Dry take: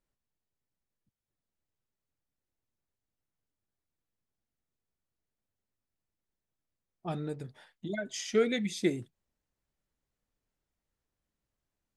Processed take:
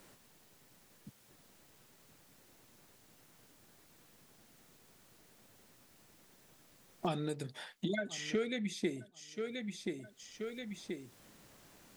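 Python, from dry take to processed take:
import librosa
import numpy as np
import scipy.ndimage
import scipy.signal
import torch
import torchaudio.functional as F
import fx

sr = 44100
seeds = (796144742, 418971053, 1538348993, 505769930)

p1 = x + fx.echo_feedback(x, sr, ms=1030, feedback_pct=19, wet_db=-20.5, dry=0)
p2 = fx.band_squash(p1, sr, depth_pct=100)
y = p2 * 10.0 ** (-1.0 / 20.0)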